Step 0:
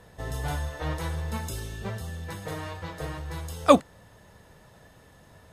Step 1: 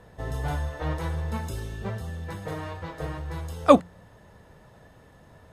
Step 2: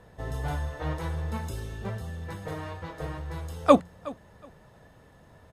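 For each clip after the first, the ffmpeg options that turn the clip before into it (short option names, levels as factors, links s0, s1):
-af "highshelf=f=2600:g=-8.5,bandreject=f=87.9:t=h:w=4,bandreject=f=175.8:t=h:w=4,volume=1.26"
-af "aecho=1:1:368|736:0.1|0.021,volume=0.794"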